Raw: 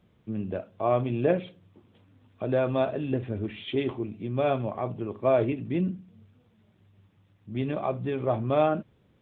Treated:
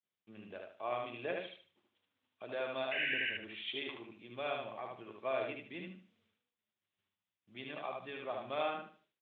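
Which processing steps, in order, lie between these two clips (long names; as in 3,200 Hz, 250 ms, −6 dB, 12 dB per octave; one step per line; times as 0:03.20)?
downward expander −51 dBFS
first difference
sound drawn into the spectrogram noise, 0:02.91–0:03.30, 1,500–3,000 Hz −42 dBFS
high-frequency loss of the air 150 metres
repeating echo 75 ms, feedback 28%, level −3 dB
level +7 dB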